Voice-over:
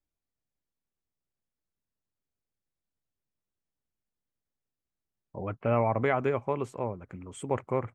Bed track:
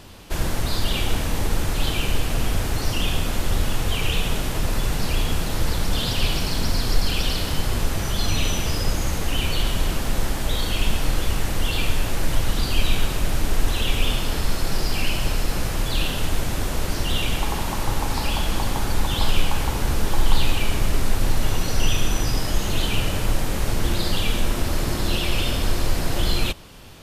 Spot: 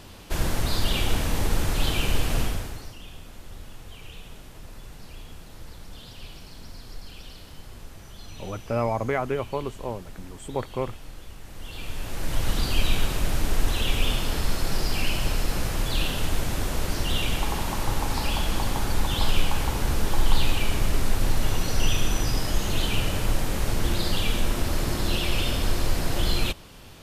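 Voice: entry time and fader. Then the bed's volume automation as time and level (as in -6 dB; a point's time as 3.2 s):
3.05 s, +0.5 dB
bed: 2.4 s -1.5 dB
2.97 s -20 dB
11.4 s -20 dB
12.49 s -2.5 dB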